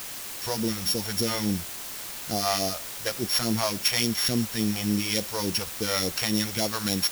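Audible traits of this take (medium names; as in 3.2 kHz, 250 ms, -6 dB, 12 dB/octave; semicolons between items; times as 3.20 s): a buzz of ramps at a fixed pitch in blocks of 8 samples; phasing stages 2, 3.5 Hz, lowest notch 230–1500 Hz; a quantiser's noise floor 6-bit, dither triangular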